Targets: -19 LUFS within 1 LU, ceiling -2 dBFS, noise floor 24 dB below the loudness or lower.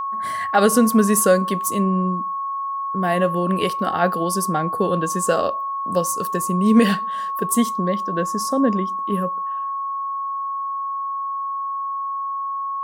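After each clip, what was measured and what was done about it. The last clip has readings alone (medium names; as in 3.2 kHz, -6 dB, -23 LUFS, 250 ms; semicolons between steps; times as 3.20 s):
steady tone 1.1 kHz; tone level -23 dBFS; loudness -21.0 LUFS; peak level -4.5 dBFS; loudness target -19.0 LUFS
-> band-stop 1.1 kHz, Q 30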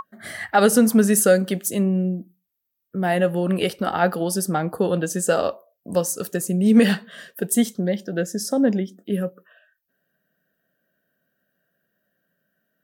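steady tone not found; loudness -21.0 LUFS; peak level -5.0 dBFS; loudness target -19.0 LUFS
-> trim +2 dB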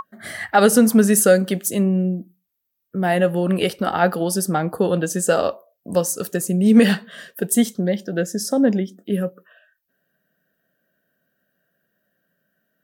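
loudness -19.0 LUFS; peak level -3.0 dBFS; noise floor -75 dBFS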